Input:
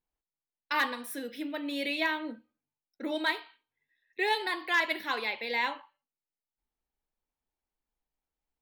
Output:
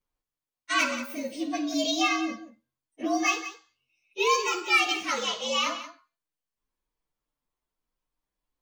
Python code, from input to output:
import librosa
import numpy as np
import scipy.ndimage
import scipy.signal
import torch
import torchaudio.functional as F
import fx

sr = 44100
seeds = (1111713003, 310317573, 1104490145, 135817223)

y = fx.partial_stretch(x, sr, pct=116)
y = fx.echo_multitap(y, sr, ms=(53, 84, 179), db=(-13.5, -19.5, -13.0))
y = F.gain(torch.from_numpy(y), 7.5).numpy()